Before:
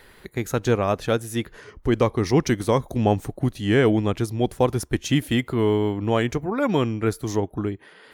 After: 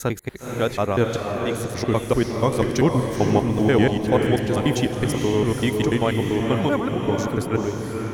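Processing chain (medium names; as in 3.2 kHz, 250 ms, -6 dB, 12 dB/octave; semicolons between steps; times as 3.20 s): slices played last to first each 97 ms, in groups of 6; echo that smears into a reverb 483 ms, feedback 43%, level -3.5 dB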